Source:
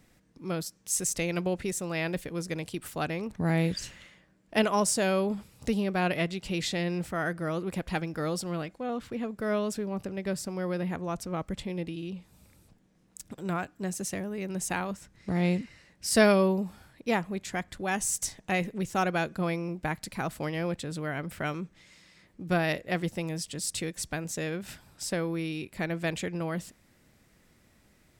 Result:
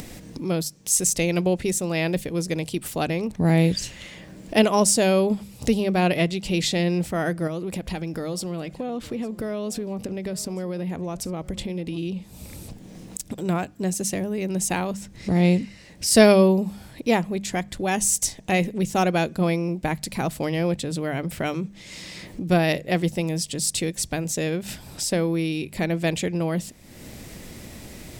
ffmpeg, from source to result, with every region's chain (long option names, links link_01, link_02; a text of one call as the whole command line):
ffmpeg -i in.wav -filter_complex "[0:a]asettb=1/sr,asplit=3[link_01][link_02][link_03];[link_01]atrim=end=7.474[link_04];[link_02]atrim=start=7.47:end=11.98,asetpts=PTS-STARTPTS,afade=type=in:duration=0.004:curve=qsin,afade=type=out:start_time=4.506:duration=0.004:curve=qsin,acompressor=threshold=-35dB:ratio=3:attack=3.2:release=140:knee=1:detection=peak,aecho=1:1:855:0.0891,atrim=end_sample=198891[link_05];[link_03]atrim=start=11.976[link_06];[link_04][link_05]acrossfade=duration=0.004:curve1=hsin:curve2=qsin[link_07];[link_07][link_06]acrossfade=duration=0.004:curve1=qsin:curve2=hsin,equalizer=frequency=1400:width_type=o:width=1.1:gain=-8,bandreject=frequency=50:width_type=h:width=6,bandreject=frequency=100:width_type=h:width=6,bandreject=frequency=150:width_type=h:width=6,bandreject=frequency=200:width_type=h:width=6,acompressor=mode=upward:threshold=-34dB:ratio=2.5,volume=8.5dB" out.wav